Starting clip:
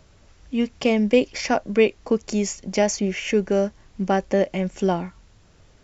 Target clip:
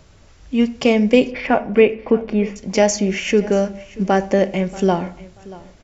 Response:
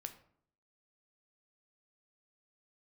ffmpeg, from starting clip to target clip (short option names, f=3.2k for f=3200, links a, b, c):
-filter_complex "[0:a]asettb=1/sr,asplit=3[a][b][c];[a]atrim=end=1.314[d];[b]atrim=start=1.31:end=2.56,asetpts=PTS-STARTPTS,afade=t=in:d=0.004:c=qsin,afade=t=out:st=1.246:d=0.004:c=qsin,lowpass=f=2.8k:w=0.5412,lowpass=f=2.8k:w=1.3066[e];[c]atrim=start=2.556[f];[d][e]acrossfade=d=0.004:c1=hsin:c2=qsin[g];[g][f]acrossfade=d=0.004:c1=qsin:c2=hsin,aecho=1:1:634|1268:0.1|0.023,asplit=2[h][i];[1:a]atrim=start_sample=2205[j];[i][j]afir=irnorm=-1:irlink=0,volume=5.5dB[k];[h][k]amix=inputs=2:normalize=0,volume=-2dB"